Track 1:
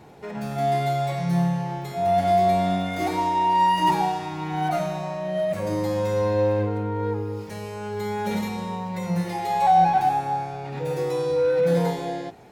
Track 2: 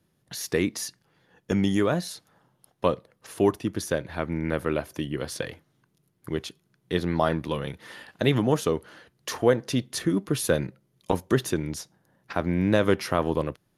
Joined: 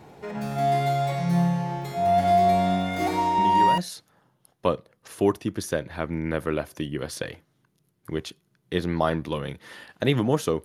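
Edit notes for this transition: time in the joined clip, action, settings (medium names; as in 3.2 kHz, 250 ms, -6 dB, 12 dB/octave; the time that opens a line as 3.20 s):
track 1
3.38 s: add track 2 from 1.57 s 0.40 s -7.5 dB
3.78 s: go over to track 2 from 1.97 s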